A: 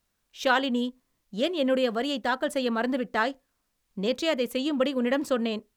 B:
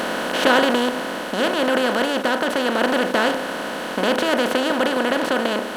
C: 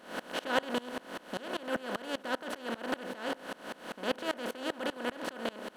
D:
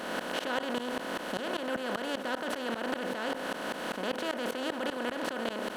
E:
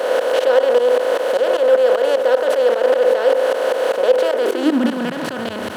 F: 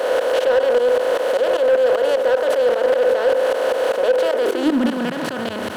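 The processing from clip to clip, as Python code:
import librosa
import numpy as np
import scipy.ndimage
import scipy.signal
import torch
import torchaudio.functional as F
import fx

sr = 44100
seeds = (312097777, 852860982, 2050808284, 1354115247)

y1 = fx.bin_compress(x, sr, power=0.2)
y1 = fx.rider(y1, sr, range_db=10, speed_s=2.0)
y1 = F.gain(torch.from_numpy(y1), -2.0).numpy()
y2 = fx.tremolo_decay(y1, sr, direction='swelling', hz=5.1, depth_db=25)
y2 = F.gain(torch.from_numpy(y2), -8.5).numpy()
y3 = fx.env_flatten(y2, sr, amount_pct=70)
y3 = F.gain(torch.from_numpy(y3), -5.0).numpy()
y4 = fx.leveller(y3, sr, passes=2)
y4 = fx.filter_sweep_highpass(y4, sr, from_hz=500.0, to_hz=91.0, start_s=4.31, end_s=5.53, q=7.1)
y4 = F.gain(torch.from_numpy(y4), 2.5).numpy()
y5 = 10.0 ** (-9.0 / 20.0) * np.tanh(y4 / 10.0 ** (-9.0 / 20.0))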